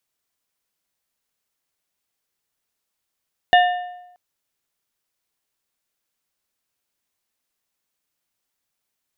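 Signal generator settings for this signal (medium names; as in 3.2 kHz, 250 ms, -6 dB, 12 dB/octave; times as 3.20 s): metal hit plate, length 0.63 s, lowest mode 717 Hz, modes 4, decay 0.91 s, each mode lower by 5.5 dB, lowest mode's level -8.5 dB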